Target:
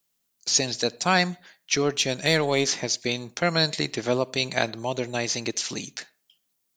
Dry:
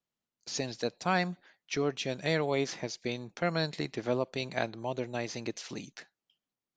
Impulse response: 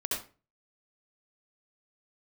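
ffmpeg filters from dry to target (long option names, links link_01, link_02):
-filter_complex "[0:a]asettb=1/sr,asplit=3[link_01][link_02][link_03];[link_01]atrim=end=1.864[link_04];[link_02]atrim=start=1.86:end=2.68,asetpts=PTS-STARTPTS,afade=type=in:duration=0.004:curve=qsin,afade=type=out:start_time=0.816:duration=0.004:curve=qsin,aeval=exprs='0.158*(cos(1*acos(clip(val(0)/0.158,-1,1)))-cos(1*PI/2))+0.002*(cos(8*acos(clip(val(0)/0.158,-1,1)))-cos(8*PI/2))':channel_layout=same[link_05];[link_03]atrim=start=2.676[link_06];[link_04][link_05]acrossfade=duration=0.004:curve1=hsin:curve2=qsin[link_07];[link_07][link_06]acrossfade=duration=0.004:curve1=qsin:curve2=hsin,asplit=2[link_08][link_09];[1:a]atrim=start_sample=2205,lowpass=2900[link_10];[link_09][link_10]afir=irnorm=-1:irlink=0,volume=-27.5dB[link_11];[link_08][link_11]amix=inputs=2:normalize=0,crystalizer=i=3.5:c=0,volume=5.5dB"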